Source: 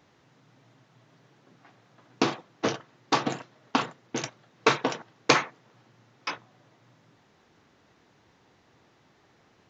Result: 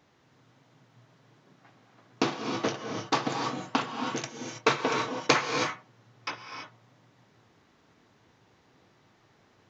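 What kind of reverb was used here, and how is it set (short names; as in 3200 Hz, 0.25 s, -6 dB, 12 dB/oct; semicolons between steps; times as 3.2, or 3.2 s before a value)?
non-linear reverb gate 0.35 s rising, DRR 3.5 dB; gain -2.5 dB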